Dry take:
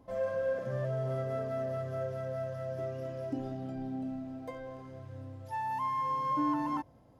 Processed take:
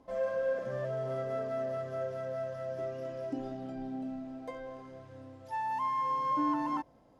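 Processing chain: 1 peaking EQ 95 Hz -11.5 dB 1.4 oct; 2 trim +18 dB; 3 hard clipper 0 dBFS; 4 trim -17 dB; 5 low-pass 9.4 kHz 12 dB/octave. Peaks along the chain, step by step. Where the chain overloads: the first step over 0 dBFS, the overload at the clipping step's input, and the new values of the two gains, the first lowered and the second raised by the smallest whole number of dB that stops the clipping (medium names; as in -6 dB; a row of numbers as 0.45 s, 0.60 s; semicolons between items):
-22.5 dBFS, -4.5 dBFS, -4.5 dBFS, -21.5 dBFS, -21.5 dBFS; nothing clips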